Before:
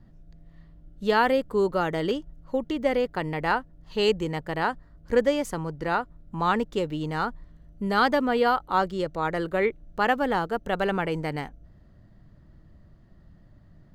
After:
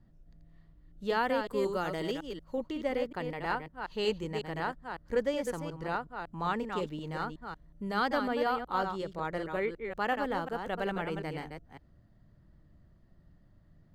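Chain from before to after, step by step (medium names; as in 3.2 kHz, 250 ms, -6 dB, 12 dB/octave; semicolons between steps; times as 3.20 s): chunks repeated in reverse 184 ms, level -6 dB; 1.47–2.55 s: treble shelf 4 kHz +7.5 dB; trim -8.5 dB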